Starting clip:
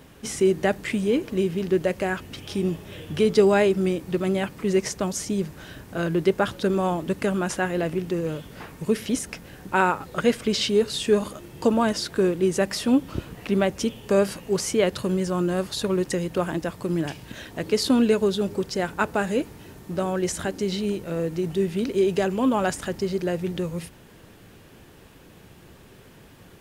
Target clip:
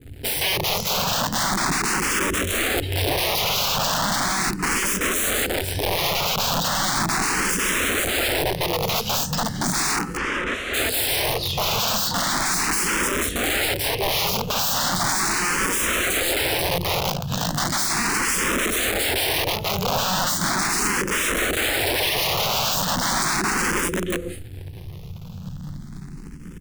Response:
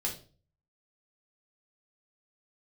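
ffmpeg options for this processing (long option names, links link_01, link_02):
-filter_complex "[1:a]atrim=start_sample=2205,atrim=end_sample=3969[link_01];[0:a][link_01]afir=irnorm=-1:irlink=0,asplit=3[link_02][link_03][link_04];[link_02]afade=type=out:start_time=16.62:duration=0.02[link_05];[link_03]tremolo=f=53:d=0.889,afade=type=in:start_time=16.62:duration=0.02,afade=type=out:start_time=17.21:duration=0.02[link_06];[link_04]afade=type=in:start_time=17.21:duration=0.02[link_07];[link_05][link_06][link_07]amix=inputs=3:normalize=0,acrossover=split=230[link_08][link_09];[link_09]aeval=exprs='sgn(val(0))*max(abs(val(0))-0.00562,0)':channel_layout=same[link_10];[link_08][link_10]amix=inputs=2:normalize=0,alimiter=limit=-11.5dB:level=0:latency=1:release=71,asplit=2[link_11][link_12];[link_12]acompressor=threshold=-34dB:ratio=8,volume=2dB[link_13];[link_11][link_13]amix=inputs=2:normalize=0,asettb=1/sr,asplit=3[link_14][link_15][link_16];[link_14]atrim=end=12.104[link_17];[link_15]atrim=start=12.1:end=13.06,asetpts=PTS-STARTPTS,afade=type=in:duration=0.004:curve=qsin,afade=type=out:start_time=0.956:duration=0.004:curve=qsin,bandreject=frequency=50:width_type=h:width=6,bandreject=frequency=100:width_type=h:width=6,bandreject=frequency=150:width_type=h:width=6,bandreject=frequency=200:width_type=h:width=6,bandreject=frequency=250:width_type=h:width=6,bandreject=frequency=300:width_type=h:width=6[link_18];[link_16]atrim=start=13.056[link_19];[link_17][link_18]acrossfade=duration=0.004:curve1=hsin:curve2=qsin[link_20];[link_20][link_19]acrossfade=duration=0.004:curve1=qsin:curve2=hsin,aecho=1:1:488:0.422,aeval=exprs='(mod(11.2*val(0)+1,2)-1)/11.2':channel_layout=same,asplit=3[link_21][link_22][link_23];[link_21]afade=type=out:start_time=10.16:duration=0.02[link_24];[link_22]lowpass=2900,afade=type=in:start_time=10.16:duration=0.02,afade=type=out:start_time=10.73:duration=0.02[link_25];[link_23]afade=type=in:start_time=10.73:duration=0.02[link_26];[link_24][link_25][link_26]amix=inputs=3:normalize=0,asplit=2[link_27][link_28];[link_28]afreqshift=0.37[link_29];[link_27][link_29]amix=inputs=2:normalize=1,volume=6.5dB"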